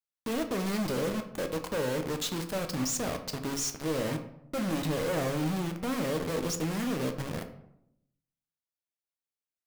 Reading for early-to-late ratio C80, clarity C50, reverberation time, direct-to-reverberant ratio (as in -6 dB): 13.5 dB, 10.0 dB, 0.80 s, 6.0 dB